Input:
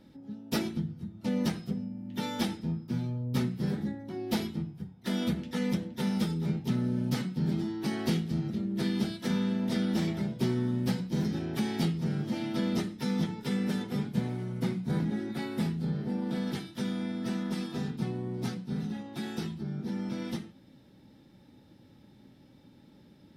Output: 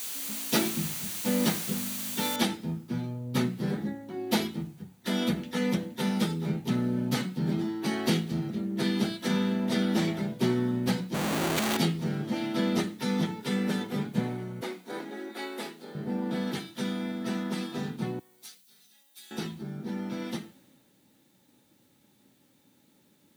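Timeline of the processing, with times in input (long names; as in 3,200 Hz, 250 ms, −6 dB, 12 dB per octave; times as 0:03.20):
0:02.36: noise floor change −42 dB −67 dB
0:11.14–0:11.77: comparator with hysteresis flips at −45 dBFS
0:14.61–0:15.95: high-pass filter 310 Hz 24 dB per octave
0:18.19–0:19.31: first difference
whole clip: high-pass filter 270 Hz 6 dB per octave; notch filter 5,200 Hz, Q 12; multiband upward and downward expander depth 40%; level +5.5 dB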